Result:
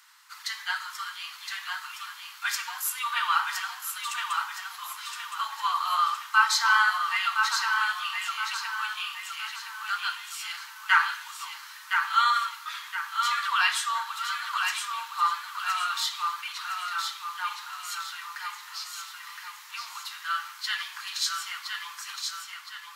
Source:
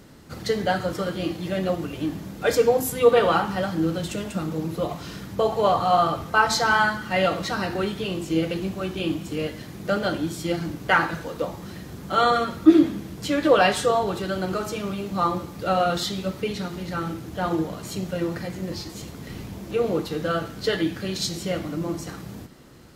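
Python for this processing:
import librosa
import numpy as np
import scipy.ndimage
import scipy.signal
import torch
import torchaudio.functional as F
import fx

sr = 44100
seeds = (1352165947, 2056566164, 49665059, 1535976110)

y = scipy.signal.sosfilt(scipy.signal.butter(12, 950.0, 'highpass', fs=sr, output='sos'), x)
y = fx.echo_feedback(y, sr, ms=1016, feedback_pct=43, wet_db=-5)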